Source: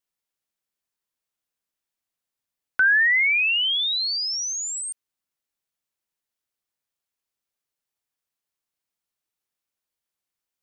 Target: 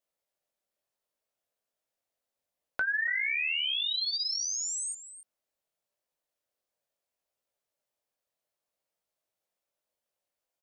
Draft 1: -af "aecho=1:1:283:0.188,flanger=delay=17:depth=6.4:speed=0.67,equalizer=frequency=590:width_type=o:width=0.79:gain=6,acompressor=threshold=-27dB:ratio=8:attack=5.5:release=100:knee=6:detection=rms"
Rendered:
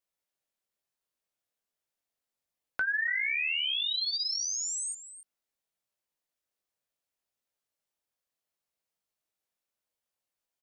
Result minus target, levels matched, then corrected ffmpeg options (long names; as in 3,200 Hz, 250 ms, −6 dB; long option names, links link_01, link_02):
500 Hz band −4.5 dB
-af "aecho=1:1:283:0.188,flanger=delay=17:depth=6.4:speed=0.67,equalizer=frequency=590:width_type=o:width=0.79:gain=14,acompressor=threshold=-27dB:ratio=8:attack=5.5:release=100:knee=6:detection=rms"